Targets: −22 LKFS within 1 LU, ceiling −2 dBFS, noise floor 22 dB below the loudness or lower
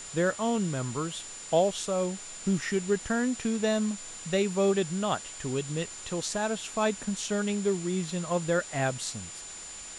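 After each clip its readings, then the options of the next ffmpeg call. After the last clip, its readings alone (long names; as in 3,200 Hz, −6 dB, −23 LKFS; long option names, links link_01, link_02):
interfering tone 7,100 Hz; level of the tone −42 dBFS; background noise floor −43 dBFS; target noise floor −52 dBFS; integrated loudness −30.0 LKFS; sample peak −12.5 dBFS; target loudness −22.0 LKFS
→ -af "bandreject=frequency=7100:width=30"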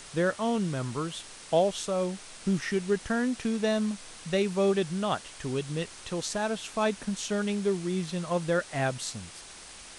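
interfering tone none found; background noise floor −47 dBFS; target noise floor −52 dBFS
→ -af "afftdn=noise_reduction=6:noise_floor=-47"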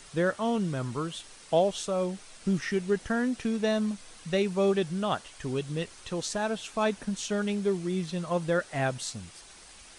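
background noise floor −51 dBFS; target noise floor −52 dBFS
→ -af "afftdn=noise_reduction=6:noise_floor=-51"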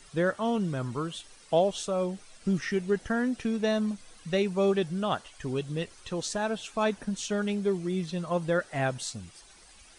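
background noise floor −54 dBFS; integrated loudness −30.0 LKFS; sample peak −13.0 dBFS; target loudness −22.0 LKFS
→ -af "volume=8dB"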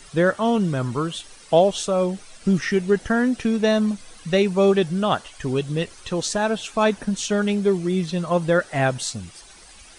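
integrated loudness −22.0 LKFS; sample peak −5.0 dBFS; background noise floor −46 dBFS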